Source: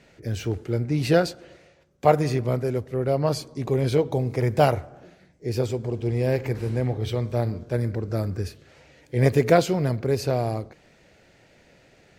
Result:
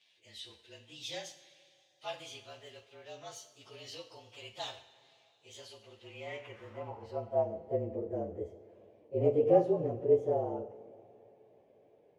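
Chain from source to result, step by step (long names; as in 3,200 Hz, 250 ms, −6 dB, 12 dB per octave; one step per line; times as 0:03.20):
partials spread apart or drawn together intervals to 111%
band-pass filter sweep 3,700 Hz → 460 Hz, 0:05.69–0:07.74
dynamic equaliser 1,600 Hz, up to −5 dB, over −58 dBFS, Q 1.7
coupled-rooms reverb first 0.53 s, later 3.7 s, from −18 dB, DRR 6.5 dB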